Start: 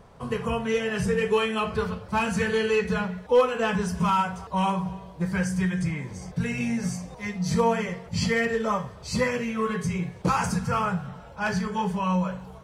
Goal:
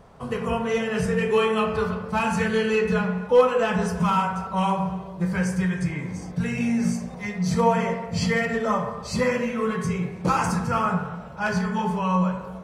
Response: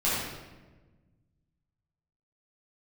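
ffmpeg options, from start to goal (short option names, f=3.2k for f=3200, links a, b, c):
-filter_complex "[0:a]asplit=2[a][b];[b]highpass=230,lowpass=2k[c];[1:a]atrim=start_sample=2205[d];[c][d]afir=irnorm=-1:irlink=0,volume=-14dB[e];[a][e]amix=inputs=2:normalize=0"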